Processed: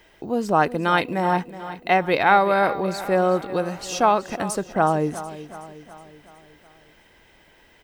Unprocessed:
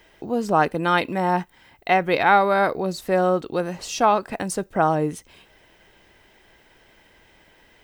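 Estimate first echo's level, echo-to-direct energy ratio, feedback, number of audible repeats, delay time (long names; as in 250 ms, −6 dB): −14.5 dB, −13.0 dB, 53%, 4, 370 ms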